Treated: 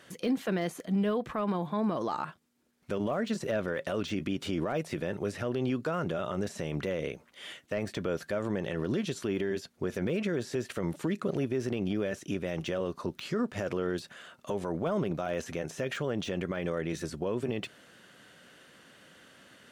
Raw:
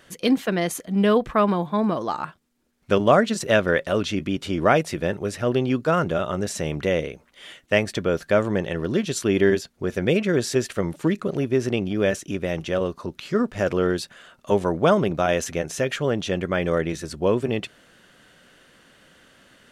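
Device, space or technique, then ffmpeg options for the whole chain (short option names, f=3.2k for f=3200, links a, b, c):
podcast mastering chain: -af "highpass=90,deesser=0.9,acompressor=threshold=-22dB:ratio=3,alimiter=limit=-19.5dB:level=0:latency=1:release=37,volume=-1.5dB" -ar 44100 -c:a libmp3lame -b:a 96k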